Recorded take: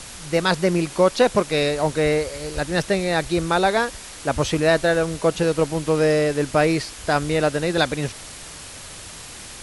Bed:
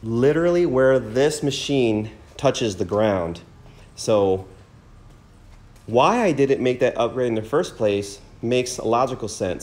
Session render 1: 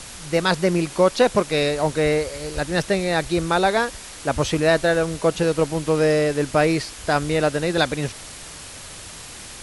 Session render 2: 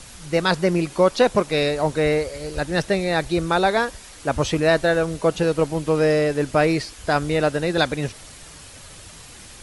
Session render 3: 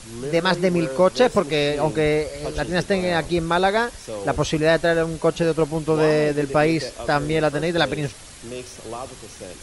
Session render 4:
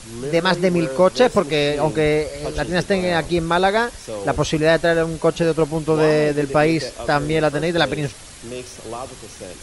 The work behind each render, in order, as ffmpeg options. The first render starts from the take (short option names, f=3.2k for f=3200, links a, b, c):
-af anull
-af "afftdn=nr=6:nf=-38"
-filter_complex "[1:a]volume=-13.5dB[a];[0:a][a]amix=inputs=2:normalize=0"
-af "volume=2dB"